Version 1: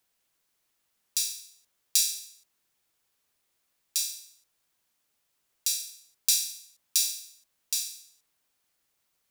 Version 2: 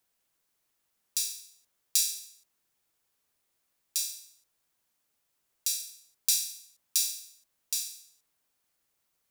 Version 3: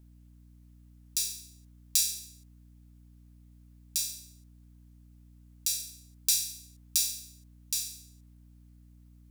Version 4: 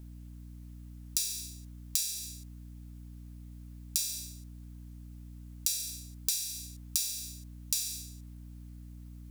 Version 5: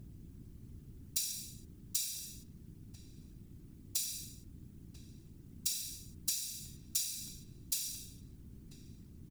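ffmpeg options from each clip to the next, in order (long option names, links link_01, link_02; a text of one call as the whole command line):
ffmpeg -i in.wav -af "equalizer=frequency=3300:width_type=o:width=2.1:gain=-2.5,volume=-1dB" out.wav
ffmpeg -i in.wav -af "aeval=exprs='val(0)+0.002*(sin(2*PI*60*n/s)+sin(2*PI*2*60*n/s)/2+sin(2*PI*3*60*n/s)/3+sin(2*PI*4*60*n/s)/4+sin(2*PI*5*60*n/s)/5)':channel_layout=same" out.wav
ffmpeg -i in.wav -af "acompressor=threshold=-35dB:ratio=12,volume=8.5dB" out.wav
ffmpeg -i in.wav -filter_complex "[0:a]asplit=2[link_01][link_02];[link_02]adelay=991.3,volume=-11dB,highshelf=frequency=4000:gain=-22.3[link_03];[link_01][link_03]amix=inputs=2:normalize=0,afftfilt=real='hypot(re,im)*cos(2*PI*random(0))':imag='hypot(re,im)*sin(2*PI*random(1))':win_size=512:overlap=0.75,volume=1.5dB" out.wav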